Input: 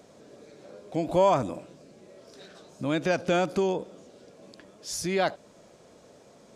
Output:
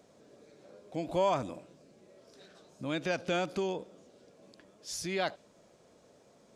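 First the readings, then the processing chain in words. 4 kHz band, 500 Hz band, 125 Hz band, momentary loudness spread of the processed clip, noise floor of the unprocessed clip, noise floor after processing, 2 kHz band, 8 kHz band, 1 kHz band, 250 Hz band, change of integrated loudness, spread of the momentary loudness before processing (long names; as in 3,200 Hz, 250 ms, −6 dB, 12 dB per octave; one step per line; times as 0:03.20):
−3.0 dB, −7.0 dB, −7.5 dB, 14 LU, −55 dBFS, −63 dBFS, −4.5 dB, −5.5 dB, −7.0 dB, −7.5 dB, −7.0 dB, 13 LU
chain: dynamic equaliser 3,200 Hz, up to +5 dB, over −44 dBFS, Q 0.74
level −7.5 dB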